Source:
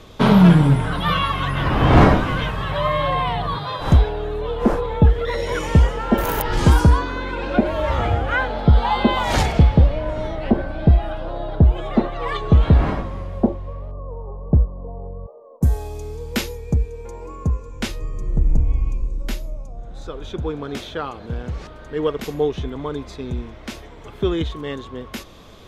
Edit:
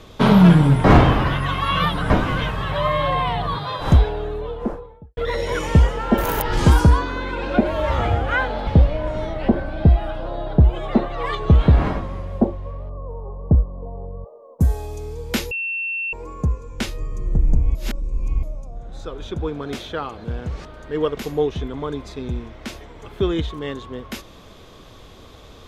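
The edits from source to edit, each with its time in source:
0.84–2.1 reverse
4.05–5.17 studio fade out
8.67–9.69 cut
16.53–17.15 bleep 2700 Hz -22.5 dBFS
18.77–19.45 reverse

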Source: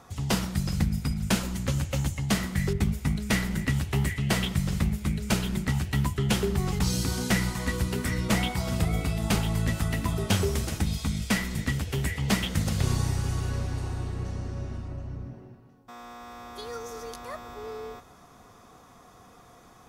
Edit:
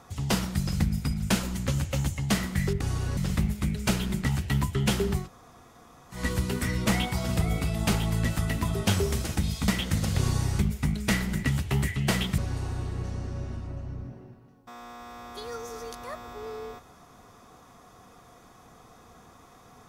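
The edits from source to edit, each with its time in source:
2.81–4.6 swap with 13.23–13.59
6.64–7.6 room tone, crossfade 0.16 s
11.11–12.32 cut

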